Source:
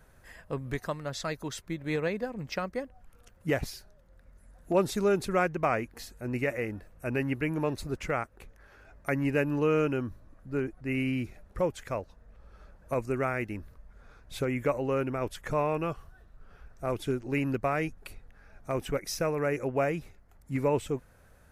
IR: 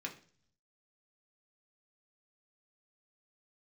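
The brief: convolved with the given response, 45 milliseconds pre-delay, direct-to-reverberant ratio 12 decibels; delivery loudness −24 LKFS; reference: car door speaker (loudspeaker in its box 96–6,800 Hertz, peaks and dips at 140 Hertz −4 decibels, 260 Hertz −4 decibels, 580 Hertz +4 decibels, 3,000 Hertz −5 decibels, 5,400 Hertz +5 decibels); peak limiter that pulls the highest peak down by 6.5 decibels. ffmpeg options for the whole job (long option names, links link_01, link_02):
-filter_complex "[0:a]alimiter=limit=-20.5dB:level=0:latency=1,asplit=2[link_01][link_02];[1:a]atrim=start_sample=2205,adelay=45[link_03];[link_02][link_03]afir=irnorm=-1:irlink=0,volume=-12dB[link_04];[link_01][link_04]amix=inputs=2:normalize=0,highpass=96,equalizer=frequency=140:width_type=q:width=4:gain=-4,equalizer=frequency=260:width_type=q:width=4:gain=-4,equalizer=frequency=580:width_type=q:width=4:gain=4,equalizer=frequency=3000:width_type=q:width=4:gain=-5,equalizer=frequency=5400:width_type=q:width=4:gain=5,lowpass=frequency=6800:width=0.5412,lowpass=frequency=6800:width=1.3066,volume=8.5dB"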